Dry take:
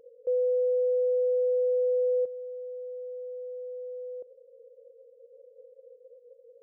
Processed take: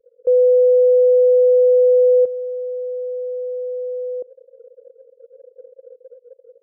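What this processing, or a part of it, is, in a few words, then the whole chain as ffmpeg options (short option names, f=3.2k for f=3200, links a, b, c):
voice memo with heavy noise removal: -af "anlmdn=0.0631,dynaudnorm=f=140:g=3:m=13dB"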